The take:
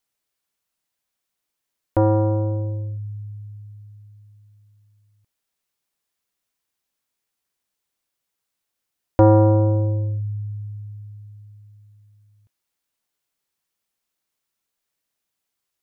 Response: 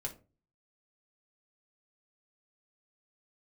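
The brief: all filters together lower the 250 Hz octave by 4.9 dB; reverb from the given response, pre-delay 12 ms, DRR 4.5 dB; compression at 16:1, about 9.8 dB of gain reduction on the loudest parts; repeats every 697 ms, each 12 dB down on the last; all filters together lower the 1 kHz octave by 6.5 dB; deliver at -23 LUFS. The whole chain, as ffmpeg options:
-filter_complex "[0:a]equalizer=f=250:t=o:g=-7,equalizer=f=1000:t=o:g=-8,acompressor=threshold=0.0794:ratio=16,aecho=1:1:697|1394|2091:0.251|0.0628|0.0157,asplit=2[s0][s1];[1:a]atrim=start_sample=2205,adelay=12[s2];[s1][s2]afir=irnorm=-1:irlink=0,volume=0.631[s3];[s0][s3]amix=inputs=2:normalize=0,volume=2"

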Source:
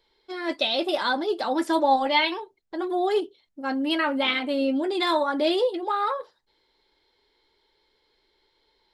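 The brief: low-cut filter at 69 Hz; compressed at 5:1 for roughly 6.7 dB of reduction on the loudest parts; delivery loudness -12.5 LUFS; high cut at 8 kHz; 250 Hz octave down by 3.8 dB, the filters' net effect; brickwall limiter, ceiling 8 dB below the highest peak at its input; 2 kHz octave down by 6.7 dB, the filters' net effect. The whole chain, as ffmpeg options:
-af "highpass=69,lowpass=8000,equalizer=f=250:t=o:g=-5,equalizer=f=2000:t=o:g=-8.5,acompressor=threshold=0.0562:ratio=5,volume=9.44,alimiter=limit=0.668:level=0:latency=1"

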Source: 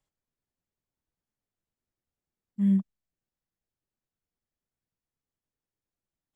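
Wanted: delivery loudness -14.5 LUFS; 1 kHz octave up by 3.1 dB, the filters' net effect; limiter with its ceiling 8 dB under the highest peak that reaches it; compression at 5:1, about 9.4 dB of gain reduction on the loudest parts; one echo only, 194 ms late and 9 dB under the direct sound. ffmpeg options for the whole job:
-af "equalizer=f=1000:t=o:g=3.5,acompressor=threshold=0.0316:ratio=5,alimiter=level_in=2.99:limit=0.0631:level=0:latency=1,volume=0.335,aecho=1:1:194:0.355,volume=25.1"

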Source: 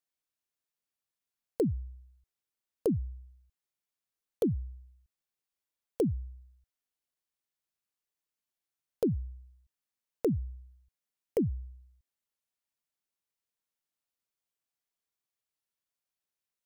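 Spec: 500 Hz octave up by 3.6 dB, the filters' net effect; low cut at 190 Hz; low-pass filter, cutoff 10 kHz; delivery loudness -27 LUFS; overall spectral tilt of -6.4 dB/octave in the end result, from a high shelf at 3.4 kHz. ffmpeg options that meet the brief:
-af "highpass=190,lowpass=10000,equalizer=f=500:t=o:g=4.5,highshelf=f=3400:g=5,volume=1.78"

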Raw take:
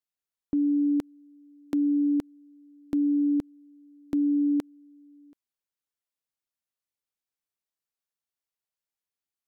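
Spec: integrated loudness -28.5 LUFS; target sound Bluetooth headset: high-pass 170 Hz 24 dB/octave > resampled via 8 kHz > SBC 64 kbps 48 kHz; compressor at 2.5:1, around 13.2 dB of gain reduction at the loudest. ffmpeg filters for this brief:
-af "acompressor=threshold=0.00708:ratio=2.5,highpass=f=170:w=0.5412,highpass=f=170:w=1.3066,aresample=8000,aresample=44100,volume=3.55" -ar 48000 -c:a sbc -b:a 64k

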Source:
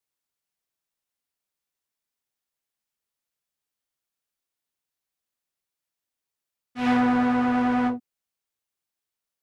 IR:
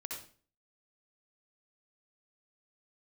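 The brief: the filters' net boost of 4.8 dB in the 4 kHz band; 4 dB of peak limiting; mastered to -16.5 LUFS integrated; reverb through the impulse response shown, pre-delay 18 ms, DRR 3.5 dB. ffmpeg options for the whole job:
-filter_complex "[0:a]equalizer=f=4000:t=o:g=6.5,alimiter=limit=0.141:level=0:latency=1,asplit=2[s0][s1];[1:a]atrim=start_sample=2205,adelay=18[s2];[s1][s2]afir=irnorm=-1:irlink=0,volume=0.75[s3];[s0][s3]amix=inputs=2:normalize=0,volume=2.37"

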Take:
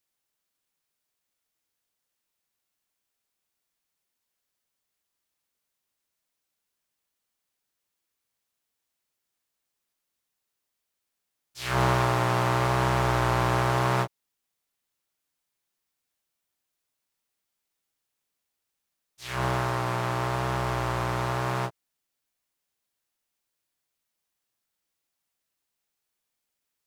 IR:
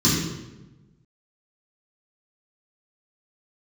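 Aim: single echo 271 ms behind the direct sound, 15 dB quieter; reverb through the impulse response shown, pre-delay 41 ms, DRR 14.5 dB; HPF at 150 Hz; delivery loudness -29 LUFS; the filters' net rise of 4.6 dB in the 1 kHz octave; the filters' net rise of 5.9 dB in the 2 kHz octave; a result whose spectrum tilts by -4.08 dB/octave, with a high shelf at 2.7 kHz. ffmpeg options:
-filter_complex "[0:a]highpass=150,equalizer=f=1000:t=o:g=3.5,equalizer=f=2000:t=o:g=3,highshelf=f=2700:g=8.5,aecho=1:1:271:0.178,asplit=2[s0][s1];[1:a]atrim=start_sample=2205,adelay=41[s2];[s1][s2]afir=irnorm=-1:irlink=0,volume=0.0282[s3];[s0][s3]amix=inputs=2:normalize=0,volume=0.473"

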